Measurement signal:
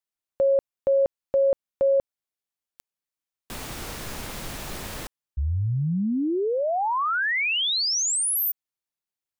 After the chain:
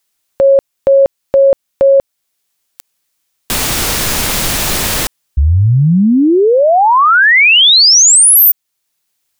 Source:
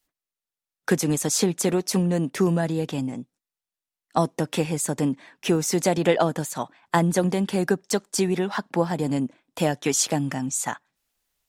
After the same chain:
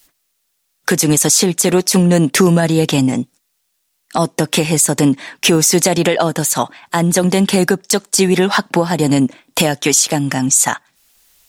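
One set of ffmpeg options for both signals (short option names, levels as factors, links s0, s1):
-af "highshelf=f=2200:g=7.5,acompressor=threshold=0.0794:ratio=6:attack=6.7:release=887:knee=6:detection=rms,alimiter=level_in=8.41:limit=0.891:release=50:level=0:latency=1,volume=0.891"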